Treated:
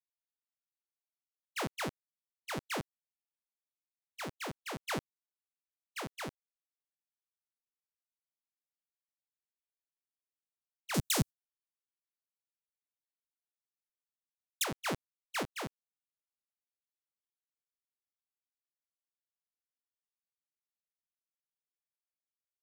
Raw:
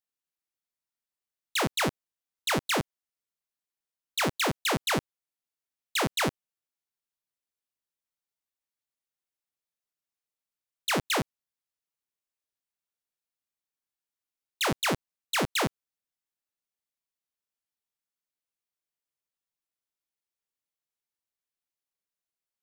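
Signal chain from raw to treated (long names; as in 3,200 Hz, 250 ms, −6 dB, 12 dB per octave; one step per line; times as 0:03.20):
0:10.94–0:14.64: bass and treble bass +14 dB, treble +14 dB
noise gate −28 dBFS, range −41 dB
sample-and-hold tremolo
level −7 dB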